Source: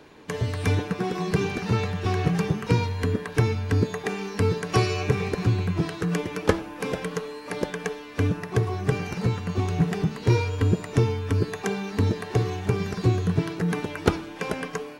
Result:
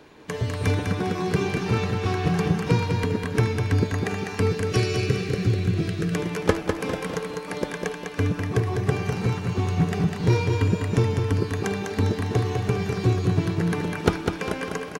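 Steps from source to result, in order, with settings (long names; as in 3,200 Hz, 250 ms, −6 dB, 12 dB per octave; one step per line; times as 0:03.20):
0:04.51–0:06.15: parametric band 930 Hz −14.5 dB 0.66 octaves
on a send: repeating echo 201 ms, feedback 45%, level −5 dB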